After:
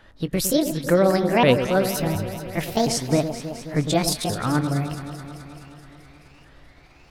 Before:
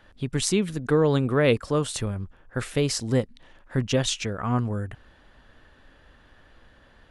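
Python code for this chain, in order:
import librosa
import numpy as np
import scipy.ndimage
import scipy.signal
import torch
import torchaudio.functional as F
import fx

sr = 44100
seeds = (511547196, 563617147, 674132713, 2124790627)

y = fx.pitch_ramps(x, sr, semitones=8.5, every_ms=716)
y = fx.echo_alternate(y, sr, ms=107, hz=1200.0, feedback_pct=82, wet_db=-9)
y = y * 10.0 ** (3.5 / 20.0)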